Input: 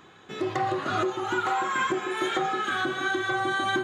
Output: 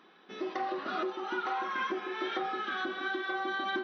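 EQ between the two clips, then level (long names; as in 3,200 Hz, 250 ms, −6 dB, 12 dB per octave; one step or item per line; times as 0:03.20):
linear-phase brick-wall band-pass 170–6,100 Hz
−7.0 dB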